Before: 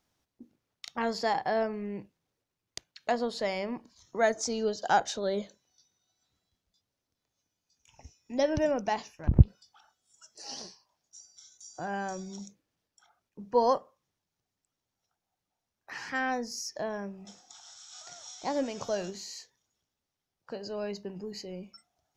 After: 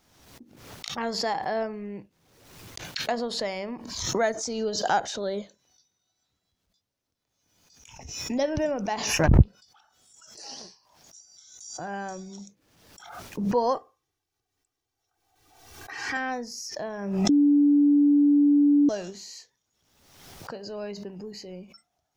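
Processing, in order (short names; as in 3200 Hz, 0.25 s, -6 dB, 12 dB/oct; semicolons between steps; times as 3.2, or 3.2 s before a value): 13.75–16.17 comb 2.6 ms, depth 80%; 17.29–18.89 bleep 289 Hz -15.5 dBFS; backwards sustainer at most 51 dB/s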